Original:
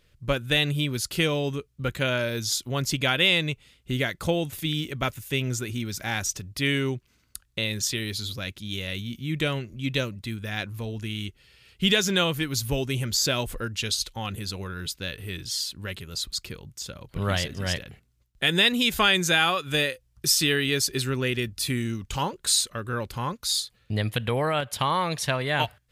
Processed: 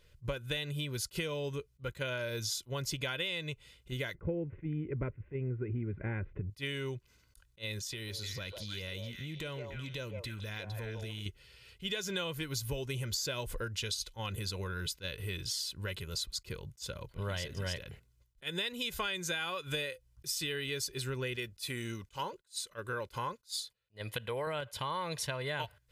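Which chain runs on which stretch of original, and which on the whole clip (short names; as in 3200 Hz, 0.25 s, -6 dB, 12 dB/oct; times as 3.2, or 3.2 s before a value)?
4.15–6.5 steep low-pass 2300 Hz 48 dB/oct + resonant low shelf 540 Hz +10 dB, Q 1.5
7.79–11.26 compressor 4:1, threshold -36 dBFS + delay with a stepping band-pass 0.153 s, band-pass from 670 Hz, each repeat 1.4 oct, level 0 dB
21.36–24.47 gate -55 dBFS, range -18 dB + low shelf 180 Hz -10.5 dB
whole clip: comb 2 ms, depth 45%; compressor 6:1, threshold -31 dBFS; attack slew limiter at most 400 dB/s; gain -2.5 dB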